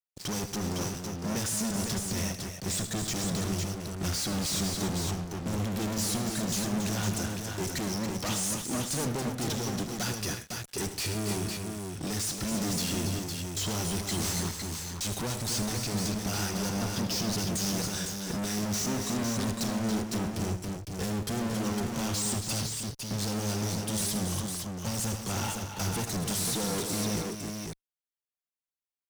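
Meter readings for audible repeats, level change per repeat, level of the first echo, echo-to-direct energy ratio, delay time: 4, repeats not evenly spaced, −12.0 dB, −2.0 dB, 77 ms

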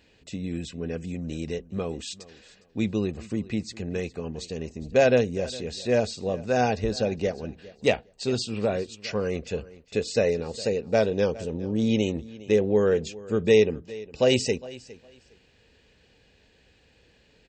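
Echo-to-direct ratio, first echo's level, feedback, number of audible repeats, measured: −19.5 dB, −19.5 dB, 19%, 2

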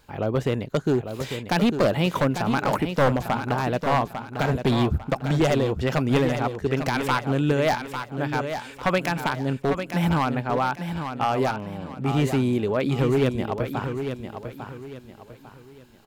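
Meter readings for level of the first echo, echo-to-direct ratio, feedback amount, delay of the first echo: −8.0 dB, −7.5 dB, 33%, 849 ms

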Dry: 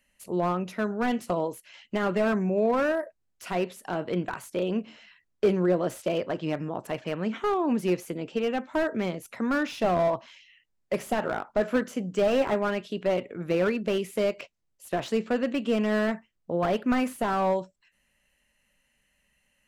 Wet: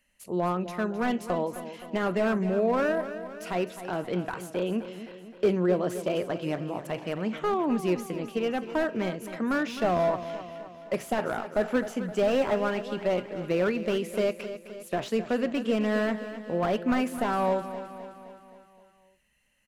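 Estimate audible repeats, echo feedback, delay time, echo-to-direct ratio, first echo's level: 5, 56%, 260 ms, −10.5 dB, −12.0 dB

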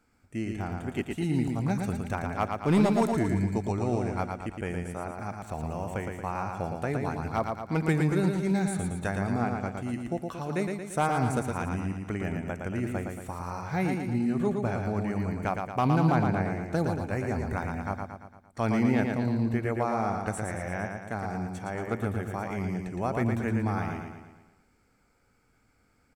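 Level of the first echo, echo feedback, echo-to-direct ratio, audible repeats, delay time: −4.5 dB, 52%, −3.0 dB, 6, 114 ms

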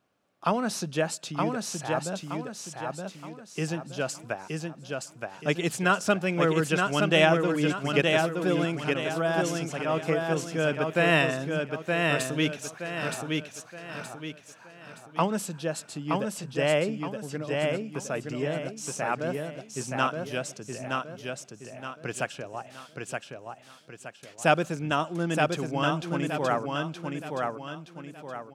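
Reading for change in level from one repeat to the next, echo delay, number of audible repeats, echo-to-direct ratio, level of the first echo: −8.0 dB, 921 ms, 4, −3.0 dB, −3.5 dB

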